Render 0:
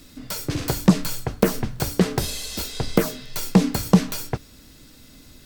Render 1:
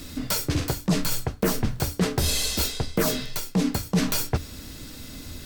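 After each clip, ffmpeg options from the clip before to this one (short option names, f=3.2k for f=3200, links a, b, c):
-af "equalizer=f=81:t=o:w=0.31:g=7,areverse,acompressor=threshold=-28dB:ratio=12,areverse,volume=8dB"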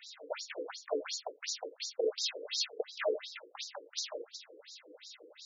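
-af "equalizer=f=250:t=o:w=1:g=-12,equalizer=f=500:t=o:w=1:g=9,equalizer=f=1k:t=o:w=1:g=-9,afftfilt=real='re*between(b*sr/1024,370*pow(5300/370,0.5+0.5*sin(2*PI*2.8*pts/sr))/1.41,370*pow(5300/370,0.5+0.5*sin(2*PI*2.8*pts/sr))*1.41)':imag='im*between(b*sr/1024,370*pow(5300/370,0.5+0.5*sin(2*PI*2.8*pts/sr))/1.41,370*pow(5300/370,0.5+0.5*sin(2*PI*2.8*pts/sr))*1.41)':win_size=1024:overlap=0.75,volume=-1.5dB"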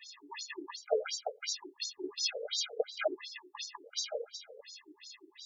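-af "afftfilt=real='re*gt(sin(2*PI*0.65*pts/sr)*(1-2*mod(floor(b*sr/1024/410),2)),0)':imag='im*gt(sin(2*PI*0.65*pts/sr)*(1-2*mod(floor(b*sr/1024/410),2)),0)':win_size=1024:overlap=0.75,volume=4.5dB"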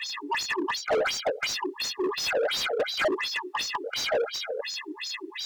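-filter_complex "[0:a]asplit=2[a][b];[b]highpass=f=720:p=1,volume=32dB,asoftclip=type=tanh:threshold=-16dB[c];[a][c]amix=inputs=2:normalize=0,lowpass=f=2.1k:p=1,volume=-6dB,acrossover=split=610|3500[d][e][f];[d]volume=24.5dB,asoftclip=hard,volume=-24.5dB[g];[g][e][f]amix=inputs=3:normalize=0"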